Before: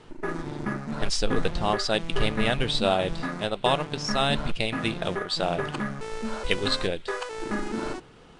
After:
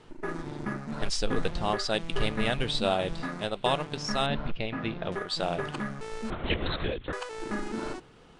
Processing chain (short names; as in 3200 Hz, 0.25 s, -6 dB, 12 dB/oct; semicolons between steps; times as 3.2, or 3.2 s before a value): 4.26–5.12 air absorption 270 m; 6.3–7.13 LPC vocoder at 8 kHz whisper; gain -3.5 dB